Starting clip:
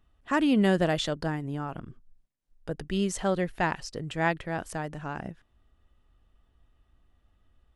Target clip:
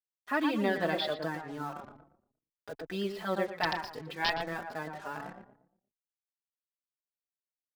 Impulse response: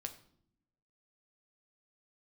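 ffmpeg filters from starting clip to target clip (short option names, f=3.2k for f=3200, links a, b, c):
-filter_complex "[0:a]highpass=f=610:p=1,bandreject=f=2.9k:w=8.5,aresample=11025,aeval=exprs='(mod(5.31*val(0)+1,2)-1)/5.31':c=same,aresample=44100,acrusher=bits=7:mix=0:aa=0.5,asplit=2[a][b];[b]adelay=117,lowpass=f=1.3k:p=1,volume=-4dB,asplit=2[c][d];[d]adelay=117,lowpass=f=1.3k:p=1,volume=0.37,asplit=2[e][f];[f]adelay=117,lowpass=f=1.3k:p=1,volume=0.37,asplit=2[g][h];[h]adelay=117,lowpass=f=1.3k:p=1,volume=0.37,asplit=2[i][j];[j]adelay=117,lowpass=f=1.3k:p=1,volume=0.37[k];[c][e][g][i][k]amix=inputs=5:normalize=0[l];[a][l]amix=inputs=2:normalize=0,asplit=2[m][n];[n]adelay=4.2,afreqshift=2.5[o];[m][o]amix=inputs=2:normalize=1,volume=1.5dB"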